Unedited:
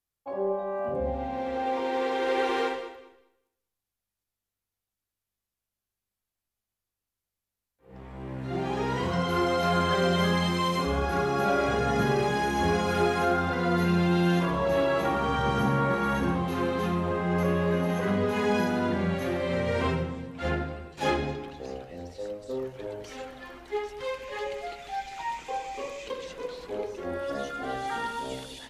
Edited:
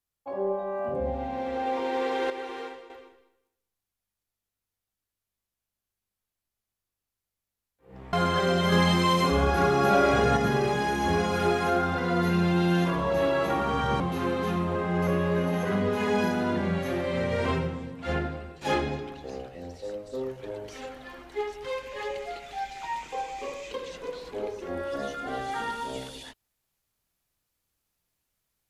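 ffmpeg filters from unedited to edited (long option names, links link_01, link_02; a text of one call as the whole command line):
ffmpeg -i in.wav -filter_complex "[0:a]asplit=7[link_01][link_02][link_03][link_04][link_05][link_06][link_07];[link_01]atrim=end=2.302[link_08];[link_02]atrim=start=2.298:end=2.902,asetpts=PTS-STARTPTS,volume=-10dB[link_09];[link_03]atrim=start=2.898:end=8.132[link_10];[link_04]atrim=start=9.678:end=10.272[link_11];[link_05]atrim=start=10.268:end=11.922,asetpts=PTS-STARTPTS,volume=4dB[link_12];[link_06]atrim=start=11.918:end=15.552[link_13];[link_07]atrim=start=16.358[link_14];[link_08][link_09]acrossfade=duration=0.004:curve1=hsin:curve2=hsin[link_15];[link_15][link_10]acrossfade=duration=0.004:curve1=hsin:curve2=hsin[link_16];[link_16][link_11]acrossfade=duration=0.004:curve1=hsin:curve2=hsin[link_17];[link_17][link_12]acrossfade=duration=0.004:curve1=hsin:curve2=hsin[link_18];[link_18][link_13]acrossfade=duration=0.004:curve1=hsin:curve2=hsin[link_19];[link_19][link_14]acrossfade=duration=0.004:curve1=hsin:curve2=hsin" out.wav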